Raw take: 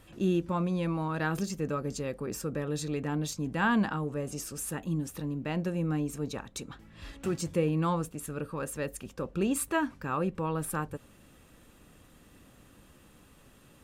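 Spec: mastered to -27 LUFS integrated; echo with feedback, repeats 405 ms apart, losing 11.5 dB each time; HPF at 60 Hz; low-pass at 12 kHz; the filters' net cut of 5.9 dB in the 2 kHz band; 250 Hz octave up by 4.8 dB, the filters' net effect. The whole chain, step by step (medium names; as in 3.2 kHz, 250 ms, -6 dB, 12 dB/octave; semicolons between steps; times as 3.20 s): high-pass 60 Hz; low-pass 12 kHz; peaking EQ 250 Hz +7 dB; peaking EQ 2 kHz -8.5 dB; feedback delay 405 ms, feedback 27%, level -11.5 dB; trim +2 dB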